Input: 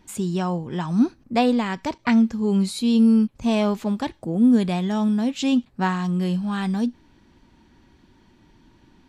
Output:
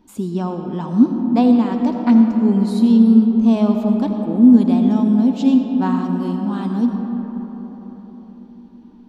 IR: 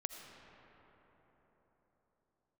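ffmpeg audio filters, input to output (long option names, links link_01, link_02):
-filter_complex "[0:a]equalizer=frequency=125:width_type=o:width=1:gain=-7,equalizer=frequency=250:width_type=o:width=1:gain=11,equalizer=frequency=1000:width_type=o:width=1:gain=4,equalizer=frequency=2000:width_type=o:width=1:gain=-8,equalizer=frequency=8000:width_type=o:width=1:gain=-7[link_01];[1:a]atrim=start_sample=2205[link_02];[link_01][link_02]afir=irnorm=-1:irlink=0"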